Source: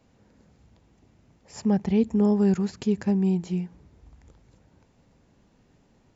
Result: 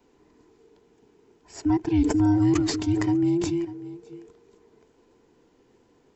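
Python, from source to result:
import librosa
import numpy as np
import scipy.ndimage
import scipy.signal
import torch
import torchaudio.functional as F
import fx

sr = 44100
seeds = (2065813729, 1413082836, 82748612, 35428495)

y = fx.band_invert(x, sr, width_hz=500)
y = y + 10.0 ** (-15.5 / 20.0) * np.pad(y, (int(596 * sr / 1000.0), 0))[:len(y)]
y = fx.sustainer(y, sr, db_per_s=35.0, at=(2.01, 3.65))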